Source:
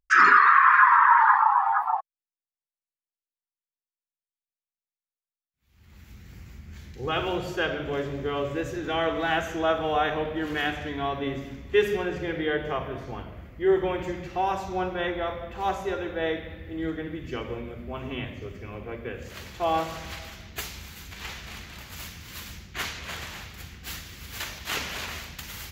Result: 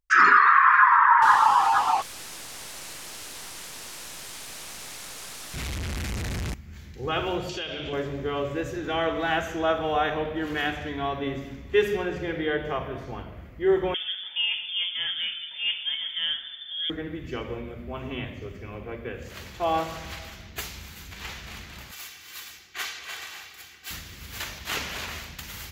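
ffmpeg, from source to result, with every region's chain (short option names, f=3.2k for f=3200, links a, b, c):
-filter_complex "[0:a]asettb=1/sr,asplit=3[a][b][c];[a]atrim=end=1.224[d];[b]atrim=start=1.22:end=6.54,asetpts=PTS-STARTPTS,afade=t=in:d=0.004:c=qsin,afade=t=out:st=5.316:d=0.004:c=qsin,aeval=exprs='val(0)+0.5*0.0562*sgn(val(0))':c=same,lowpass=10k[e];[c]atrim=start=6.536[f];[d][e]acrossfade=d=0.004:c1=hsin:c2=qsin[g];[g][f]acrossfade=d=0.004:c1=qsin:c2=hsin,asettb=1/sr,asplit=3[h][i][j];[h]atrim=end=7.494[k];[i]atrim=start=7.49:end=7.93,asetpts=PTS-STARTPTS,afade=t=in:d=0.004:c=qsin,afade=t=out:st=0.436:d=0.004:c=qsin,highshelf=f=2.2k:t=q:w=1.5:g=10.5,acompressor=threshold=-29dB:ratio=6:attack=3.2:release=140:knee=1:detection=peak,lowpass=5.8k[l];[j]atrim=start=7.926[m];[k][l]acrossfade=d=0.004:c1=hsin:c2=qsin[n];[n][m]acrossfade=d=0.004:c1=qsin:c2=hsin,asettb=1/sr,asplit=3[o][p][q];[o]atrim=end=13.944[r];[p]atrim=start=13.94:end=16.9,asetpts=PTS-STARTPTS,afade=t=in:d=0.004:c=qsin,afade=t=out:st=2.956:d=0.004:c=qsin,highshelf=f=2.2k:g=-9,bandreject=f=2.5k:w=6.4,lowpass=f=3.1k:t=q:w=0.5098,lowpass=f=3.1k:t=q:w=0.6013,lowpass=f=3.1k:t=q:w=0.9,lowpass=f=3.1k:t=q:w=2.563,afreqshift=-3600[s];[q]atrim=start=16.896[t];[r][s]acrossfade=d=0.004:c1=hsin:c2=qsin[u];[u][t]acrossfade=d=0.004:c1=qsin:c2=hsin,asettb=1/sr,asplit=3[v][w][x];[v]atrim=end=21.914[y];[w]atrim=start=21.91:end=23.91,asetpts=PTS-STARTPTS,afade=t=in:d=0.004:c=qsin,afade=t=out:st=1.996:d=0.004:c=qsin,highpass=f=1.1k:p=1,aecho=1:1:2.6:0.45,atrim=end_sample=88200[z];[x]atrim=start=23.906[aa];[y][z]acrossfade=d=0.004:c1=hsin:c2=qsin[ab];[ab][aa]acrossfade=d=0.004:c1=qsin:c2=hsin"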